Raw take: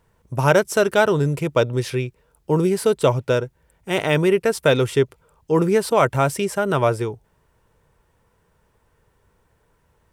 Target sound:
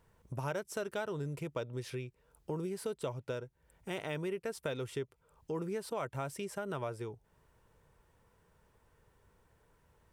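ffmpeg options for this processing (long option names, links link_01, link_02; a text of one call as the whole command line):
ffmpeg -i in.wav -af "acompressor=threshold=-37dB:ratio=2.5,volume=-5.5dB" out.wav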